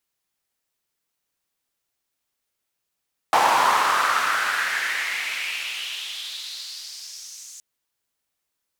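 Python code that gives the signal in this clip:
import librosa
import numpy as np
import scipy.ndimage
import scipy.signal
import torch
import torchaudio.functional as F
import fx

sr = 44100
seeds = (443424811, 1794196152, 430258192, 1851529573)

y = fx.riser_noise(sr, seeds[0], length_s=4.27, colour='white', kind='bandpass', start_hz=850.0, end_hz=6800.0, q=3.8, swell_db=-33, law='exponential')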